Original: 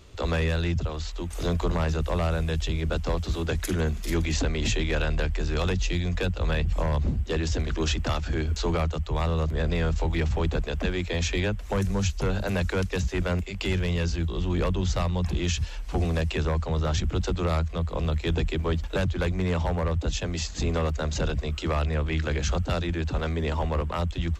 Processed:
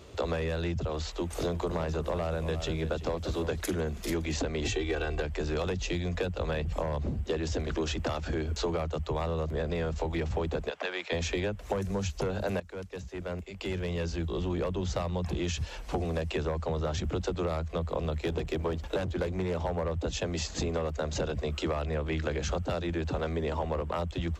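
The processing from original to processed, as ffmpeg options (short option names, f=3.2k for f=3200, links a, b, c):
-filter_complex "[0:a]asettb=1/sr,asplit=3[a][b][c];[a]atrim=end=1.034[d];[b]atrim=start=1.03:end=3.61,asetpts=PTS-STARTPTS,afade=t=in:d=0.004:c=qsin,afade=t=out:st=2.576:d=0.004:c=qsin,aecho=1:1:340:0.237,atrim=end_sample=113778[e];[c]atrim=start=3.606[f];[d][e]acrossfade=d=0.004:c1=hsin:c2=qsin[g];[g][f]acrossfade=d=0.004:c1=qsin:c2=hsin,asettb=1/sr,asplit=3[h][i][j];[h]atrim=end=4.644[k];[i]atrim=start=4.64:end=5.22,asetpts=PTS-STARTPTS,afade=t=in:d=0.004:c=qsin,afade=t=out:st=0.576:d=0.004:c=qsin,aecho=1:1:2.6:0.75,atrim=end_sample=25578[l];[j]atrim=start=5.216[m];[k][l]acrossfade=d=0.004:c1=hsin:c2=qsin[n];[n][m]acrossfade=d=0.004:c1=qsin:c2=hsin,asplit=3[o][p][q];[o]afade=t=out:st=10.69:d=0.02[r];[p]highpass=760,lowpass=5.2k,afade=t=in:st=10.69:d=0.02,afade=t=out:st=11.11:d=0.02[s];[q]afade=t=in:st=11.11:d=0.02[t];[r][s][t]amix=inputs=3:normalize=0,asettb=1/sr,asplit=3[u][v][w];[u]atrim=end=18.184[x];[v]atrim=start=18.18:end=19.62,asetpts=PTS-STARTPTS,afade=t=in:d=0.004:c=qsin,afade=t=out:st=1.436:d=0.004:c=qsin,aeval=exprs='clip(val(0),-1,0.0596)':c=same[y];[w]atrim=start=19.616[z];[x][y]acrossfade=d=0.004:c1=hsin:c2=qsin[aa];[aa][z]acrossfade=d=0.004:c1=qsin:c2=hsin,asplit=2[ab][ac];[ab]atrim=end=12.6,asetpts=PTS-STARTPTS,afade=t=out:st=12.596:d=0.004:c=hsin:silence=0.141254[ad];[ac]atrim=start=12.6,asetpts=PTS-STARTPTS,afade=t=in:d=2.05:c=qua:silence=0.141254[ae];[ad][ae]concat=n=2:v=0:a=1,highpass=59,equalizer=f=530:t=o:w=1.8:g=7,acompressor=threshold=-28dB:ratio=6"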